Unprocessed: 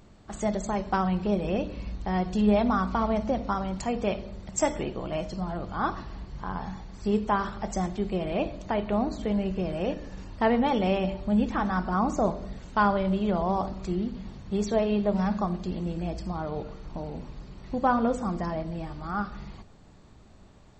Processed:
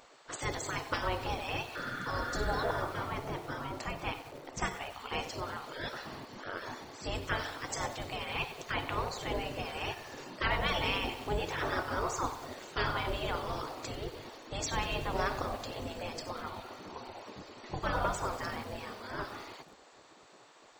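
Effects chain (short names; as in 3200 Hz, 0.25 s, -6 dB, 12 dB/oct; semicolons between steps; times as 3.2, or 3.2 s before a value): spectral gate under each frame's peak -15 dB weak; 2.65–4.94 high shelf 3100 Hz -12 dB; 1.78–2.74 spectral repair 1200–3700 Hz after; lo-fi delay 95 ms, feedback 80%, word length 8-bit, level -14 dB; gain +5 dB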